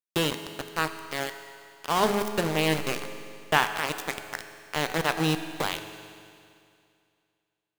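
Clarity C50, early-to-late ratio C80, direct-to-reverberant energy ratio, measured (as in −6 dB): 9.0 dB, 10.0 dB, 8.0 dB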